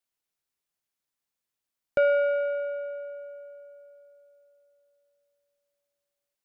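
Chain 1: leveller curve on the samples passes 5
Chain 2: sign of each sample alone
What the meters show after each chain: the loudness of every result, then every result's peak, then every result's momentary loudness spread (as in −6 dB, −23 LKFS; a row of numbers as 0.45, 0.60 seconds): −19.0, −32.5 LKFS; −13.5, −33.0 dBFS; 15, 2 LU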